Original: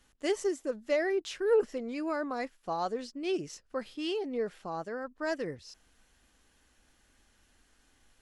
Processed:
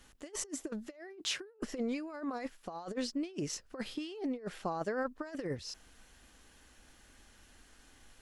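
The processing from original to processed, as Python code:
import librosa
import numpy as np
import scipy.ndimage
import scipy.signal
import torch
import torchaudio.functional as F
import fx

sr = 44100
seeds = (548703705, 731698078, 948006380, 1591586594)

y = fx.over_compress(x, sr, threshold_db=-38.0, ratio=-0.5)
y = fx.highpass(y, sr, hz=89.0, slope=12, at=(0.94, 1.59))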